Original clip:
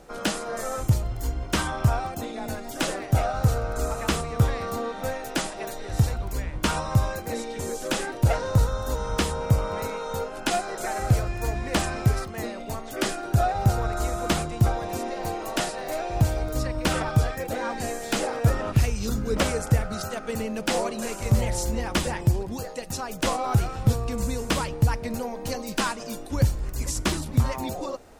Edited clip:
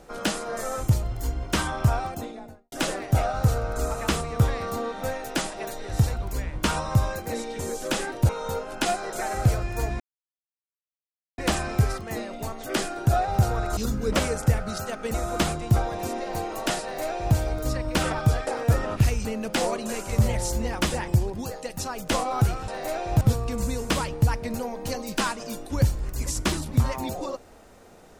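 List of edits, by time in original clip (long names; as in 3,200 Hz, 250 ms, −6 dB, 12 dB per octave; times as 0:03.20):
0:02.06–0:02.72: fade out and dull
0:08.29–0:09.94: remove
0:11.65: splice in silence 1.38 s
0:15.72–0:16.25: duplicate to 0:23.81
0:17.37–0:18.23: remove
0:19.01–0:20.38: move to 0:14.04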